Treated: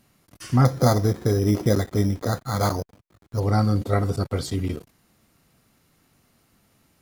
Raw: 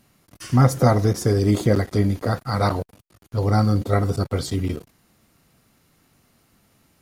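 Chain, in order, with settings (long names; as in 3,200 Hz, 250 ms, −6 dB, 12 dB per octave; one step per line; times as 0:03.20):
0:00.65–0:03.40: bad sample-rate conversion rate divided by 8×, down filtered, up hold
level −2 dB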